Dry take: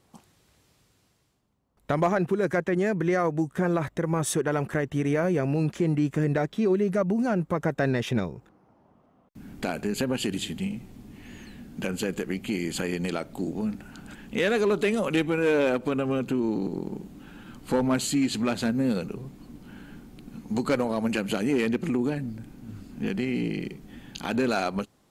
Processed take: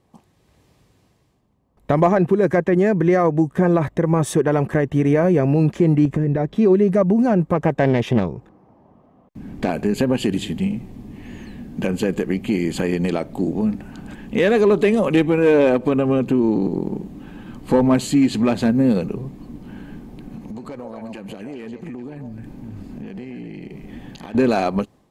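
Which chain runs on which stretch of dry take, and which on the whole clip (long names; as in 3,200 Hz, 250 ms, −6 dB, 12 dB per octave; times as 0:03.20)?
0:06.05–0:06.56: spectral tilt −1.5 dB per octave + downward compressor 10 to 1, threshold −24 dBFS + one half of a high-frequency compander encoder only
0:07.52–0:09.70: high-shelf EQ 12,000 Hz −4 dB + highs frequency-modulated by the lows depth 0.3 ms
0:19.94–0:24.35: downward compressor 12 to 1, threshold −38 dBFS + echo through a band-pass that steps 131 ms, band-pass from 720 Hz, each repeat 1.4 octaves, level −1 dB
whole clip: high-shelf EQ 2,200 Hz −10 dB; notch filter 1,400 Hz, Q 7.1; automatic gain control gain up to 6.5 dB; level +2.5 dB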